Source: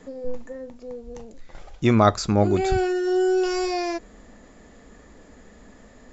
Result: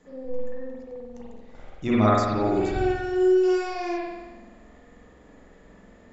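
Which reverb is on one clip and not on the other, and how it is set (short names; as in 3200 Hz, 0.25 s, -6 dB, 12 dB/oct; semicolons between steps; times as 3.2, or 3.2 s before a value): spring tank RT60 1.2 s, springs 46 ms, chirp 45 ms, DRR -7.5 dB; gain -10.5 dB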